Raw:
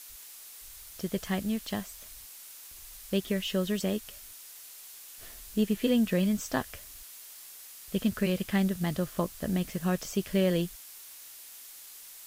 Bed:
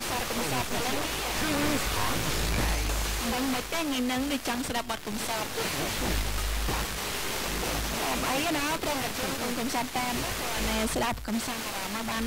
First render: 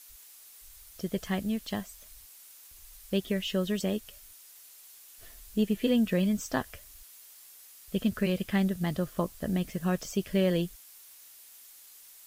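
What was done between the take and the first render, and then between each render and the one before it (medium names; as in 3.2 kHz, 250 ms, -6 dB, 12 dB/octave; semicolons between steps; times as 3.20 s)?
noise reduction 6 dB, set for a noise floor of -48 dBFS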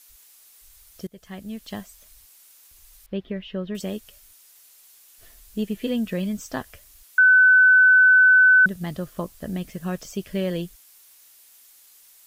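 1.07–1.77 s: fade in, from -21 dB; 3.06–3.75 s: distance through air 360 m; 7.18–8.66 s: bleep 1.51 kHz -10.5 dBFS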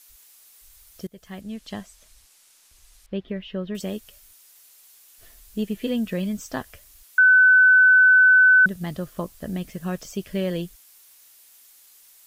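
1.41–3.28 s: low-pass 9.6 kHz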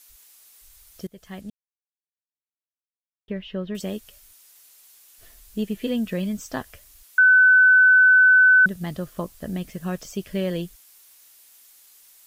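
1.50–3.28 s: mute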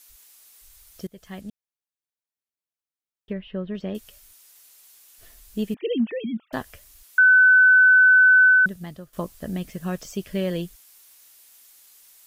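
3.33–3.95 s: distance through air 290 m; 5.74–6.53 s: formants replaced by sine waves; 8.44–9.13 s: fade out, to -15.5 dB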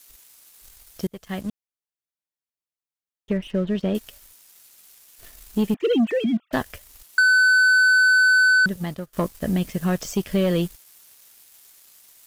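waveshaping leveller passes 2; compression, threshold -15 dBFS, peak gain reduction 3.5 dB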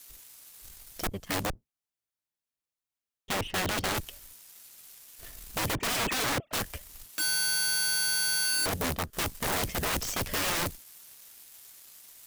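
octave divider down 1 oct, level -2 dB; integer overflow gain 24.5 dB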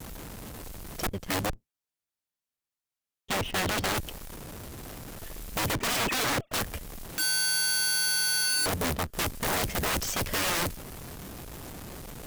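vibrato 0.32 Hz 10 cents; in parallel at -9 dB: Schmitt trigger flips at -43 dBFS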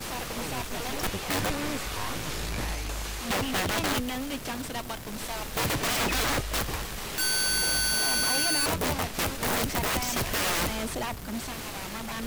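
add bed -4.5 dB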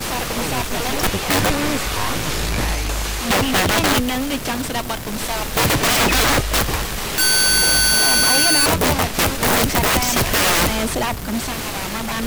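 trim +11 dB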